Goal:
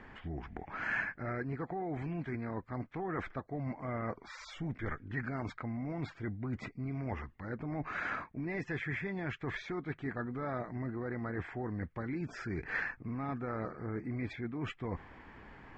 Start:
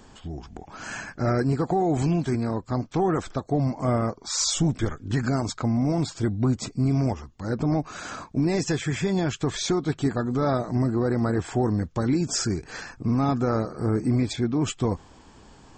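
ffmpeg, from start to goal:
ffmpeg -i in.wav -af "areverse,acompressor=threshold=-32dB:ratio=6,areverse,lowpass=frequency=2000:width_type=q:width=4.2,volume=-4dB" out.wav

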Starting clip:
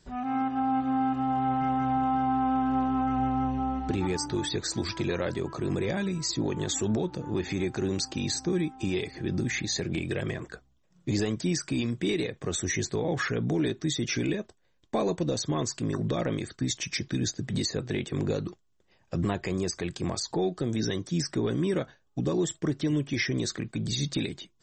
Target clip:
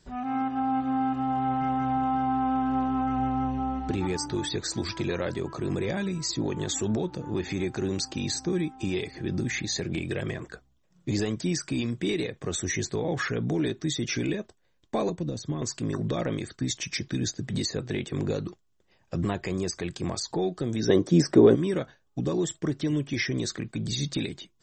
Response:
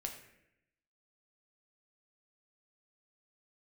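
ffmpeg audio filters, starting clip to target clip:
-filter_complex "[0:a]asettb=1/sr,asplit=3[link_01][link_02][link_03];[link_01]atrim=end=15.094[link_04];[link_02]atrim=start=15.09:end=15.62,asetpts=PTS-STARTPTS,afade=type=in:duration=0.004:curve=qsin,afade=type=out:start_time=0.526:duration=0.004:curve=qsin,acrossover=split=300[link_05][link_06];[link_06]acompressor=threshold=-38dB:ratio=6[link_07];[link_05][link_07]amix=inputs=2:normalize=0[link_08];[link_03]atrim=start=15.616[link_09];[link_04][link_08]acrossfade=duration=0.004:curve1=hsin:curve2=qsin[link_10];[link_10][link_09]acrossfade=duration=0.004:curve1=qsin:curve2=hsin,asplit=3[link_11][link_12][link_13];[link_11]afade=type=out:start_time=20.88:duration=0.02[link_14];[link_12]equalizer=frequency=440:width=0.44:gain=14,afade=type=in:start_time=20.88:duration=0.02,afade=type=out:start_time=21.54:duration=0.02[link_15];[link_13]afade=type=in:start_time=21.54:duration=0.02[link_16];[link_14][link_15][link_16]amix=inputs=3:normalize=0"

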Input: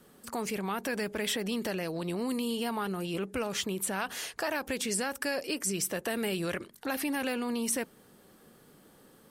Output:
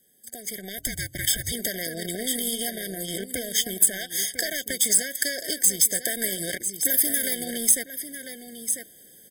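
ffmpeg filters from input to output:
ffmpeg -i in.wav -filter_complex "[0:a]asplit=2[link_01][link_02];[link_02]aecho=0:1:997:0.335[link_03];[link_01][link_03]amix=inputs=2:normalize=0,aeval=exprs='0.133*(cos(1*acos(clip(val(0)/0.133,-1,1)))-cos(1*PI/2))+0.00299*(cos(2*acos(clip(val(0)/0.133,-1,1)))-cos(2*PI/2))+0.00473*(cos(4*acos(clip(val(0)/0.133,-1,1)))-cos(4*PI/2))+0.0119*(cos(7*acos(clip(val(0)/0.133,-1,1)))-cos(7*PI/2))':channel_layout=same,asettb=1/sr,asplit=3[link_04][link_05][link_06];[link_04]atrim=end=4.734[link_07];[link_05]atrim=start=4.73:end=5.39,asetpts=PTS-STARTPTS,afade=type=in:duration=0.004:curve=qsin,afade=type=out:start_time=0.656:duration=0.004:curve=qsin,highpass=91[link_08];[link_06]atrim=start=5.386[link_09];[link_07][link_08]acrossfade=duration=0.004:curve1=hsin:curve2=qsin[link_10];[link_10][link_09]acrossfade=duration=0.004:curve1=qsin:curve2=hsin,asettb=1/sr,asplit=3[link_11][link_12][link_13];[link_11]atrim=end=6.854[link_14];[link_12]atrim=start=6.85:end=7.45,asetpts=PTS-STARTPTS,afade=type=in:duration=0.004:curve=qsin,afade=type=out:start_time=0.596:duration=0.004:curve=qsin,highshelf=frequency=11000:gain=10.5[link_15];[link_13]atrim=start=7.446[link_16];[link_14][link_15]acrossfade=duration=0.004:curve1=hsin:curve2=qsin[link_17];[link_17][link_16]acrossfade=duration=0.004:curve1=qsin:curve2=hsin,acompressor=threshold=-35dB:ratio=6,asplit=3[link_18][link_19][link_20];[link_18]afade=type=out:start_time=0.77:duration=0.02[link_21];[link_19]afreqshift=-290,afade=type=in:start_time=0.77:duration=0.02,afade=type=out:start_time=1.51:duration=0.02[link_22];[link_20]afade=type=in:start_time=1.51:duration=0.02[link_23];[link_21][link_22][link_23]amix=inputs=3:normalize=0,dynaudnorm=framelen=430:gausssize=3:maxgain=12dB,crystalizer=i=7:c=0,afftfilt=real='re*eq(mod(floor(b*sr/1024/760),2),0)':imag='im*eq(mod(floor(b*sr/1024/760),2),0)':win_size=1024:overlap=0.75,volume=-6dB" out.wav

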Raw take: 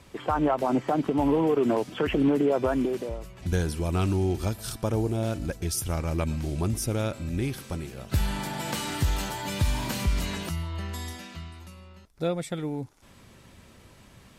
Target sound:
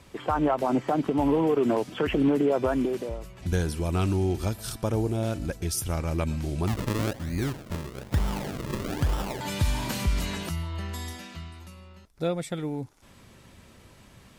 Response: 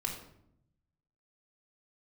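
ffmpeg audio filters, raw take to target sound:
-filter_complex "[0:a]asettb=1/sr,asplit=3[link_01][link_02][link_03];[link_01]atrim=end=6.674[link_04];[link_02]atrim=start=6.67:end=9.41,asetpts=PTS-STARTPTS,afade=type=in:duration=0.004:curve=qsin,afade=type=out:start_time=2.736:duration=0.004:curve=qsin,acrusher=samples=40:mix=1:aa=0.000001:lfo=1:lforange=40:lforate=1.1[link_05];[link_03]atrim=start=9.406[link_06];[link_04][link_05]acrossfade=duration=0.004:curve1=hsin:curve2=qsin[link_07];[link_07][link_06]acrossfade=duration=0.004:curve1=qsin:curve2=hsin"

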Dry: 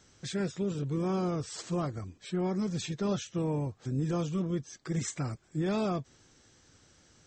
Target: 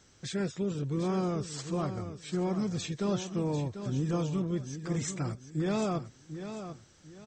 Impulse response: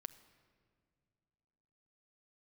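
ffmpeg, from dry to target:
-af "aecho=1:1:744|1488|2232:0.316|0.0949|0.0285"

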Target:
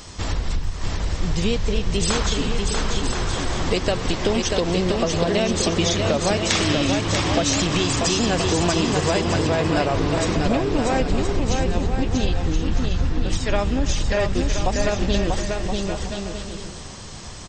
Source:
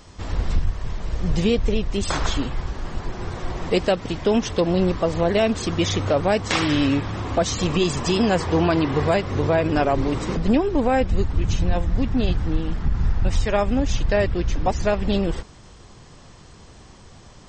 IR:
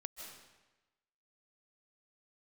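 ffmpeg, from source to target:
-filter_complex "[0:a]highshelf=frequency=2900:gain=9,acompressor=threshold=-24dB:ratio=6,aecho=1:1:640|1024|1254|1393|1476:0.631|0.398|0.251|0.158|0.1,asplit=2[link_01][link_02];[1:a]atrim=start_sample=2205,asetrate=29988,aresample=44100[link_03];[link_02][link_03]afir=irnorm=-1:irlink=0,volume=-7.5dB[link_04];[link_01][link_04]amix=inputs=2:normalize=0,volume=2.5dB"

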